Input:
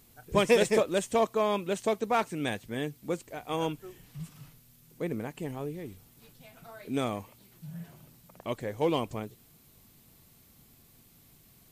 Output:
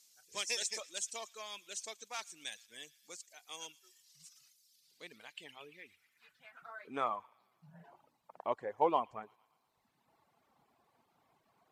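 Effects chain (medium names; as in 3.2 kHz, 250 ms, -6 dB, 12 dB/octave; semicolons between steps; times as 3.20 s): feedback echo behind a high-pass 115 ms, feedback 61%, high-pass 1.8 kHz, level -11 dB; band-pass sweep 5.9 kHz -> 880 Hz, 4.58–7.42 s; reverb removal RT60 1.3 s; trim +6 dB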